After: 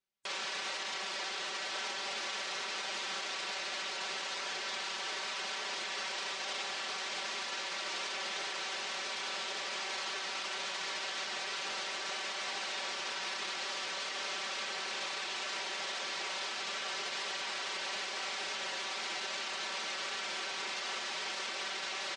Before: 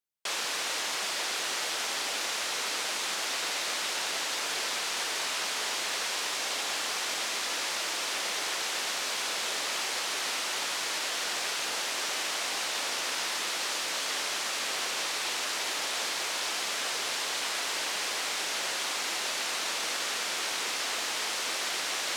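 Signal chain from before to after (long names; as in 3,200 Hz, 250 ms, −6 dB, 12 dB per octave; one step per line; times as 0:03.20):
low-pass filter 5,200 Hz 12 dB per octave
comb filter 5.2 ms, depth 88%
gate on every frequency bin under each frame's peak −30 dB strong
brickwall limiter −29.5 dBFS, peak gain reduction 11.5 dB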